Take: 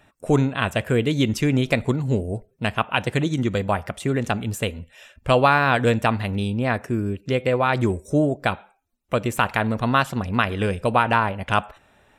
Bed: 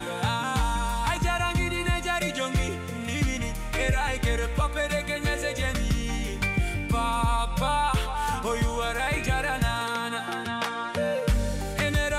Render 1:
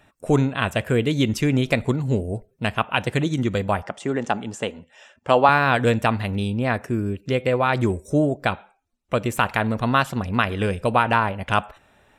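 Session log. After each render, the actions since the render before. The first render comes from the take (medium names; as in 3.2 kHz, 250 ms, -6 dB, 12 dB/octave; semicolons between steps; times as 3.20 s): 3.82–5.49 s: cabinet simulation 200–7600 Hz, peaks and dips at 850 Hz +6 dB, 2.4 kHz -5 dB, 4 kHz -6 dB; 8.45–9.15 s: low-pass 8.8 kHz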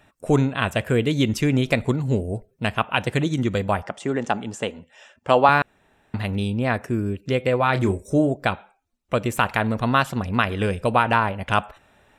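5.62–6.14 s: room tone; 7.57–8.32 s: doubling 30 ms -10.5 dB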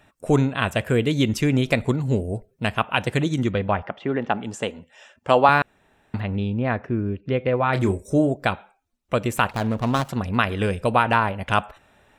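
3.51–4.44 s: low-pass 3.5 kHz 24 dB/octave; 6.20–7.73 s: distance through air 310 m; 9.51–10.09 s: median filter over 25 samples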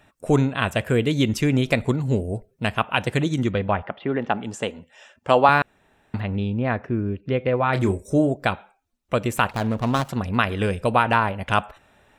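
3.69–4.19 s: steep low-pass 4.4 kHz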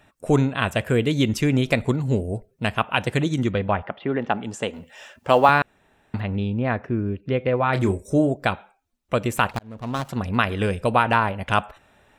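4.73–5.51 s: companding laws mixed up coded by mu; 9.59–10.24 s: fade in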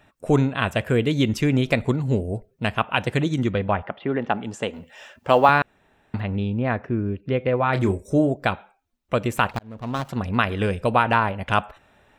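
peaking EQ 9.7 kHz -4.5 dB 1.4 oct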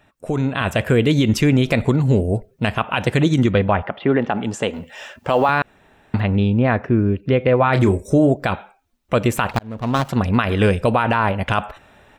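peak limiter -14 dBFS, peak gain reduction 11 dB; level rider gain up to 8 dB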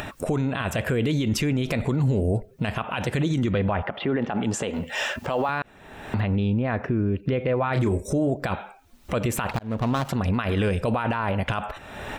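upward compressor, threshold -17 dBFS; peak limiter -15.5 dBFS, peak gain reduction 10 dB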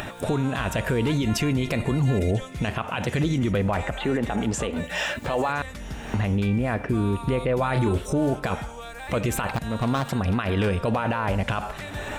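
add bed -10.5 dB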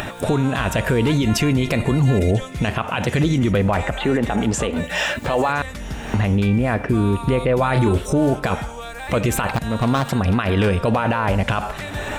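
trim +5.5 dB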